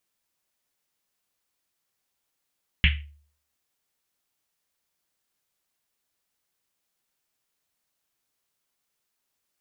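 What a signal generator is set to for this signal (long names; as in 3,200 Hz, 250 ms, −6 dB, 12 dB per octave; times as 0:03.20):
drum after Risset, pitch 73 Hz, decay 0.52 s, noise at 2,500 Hz, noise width 1,300 Hz, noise 40%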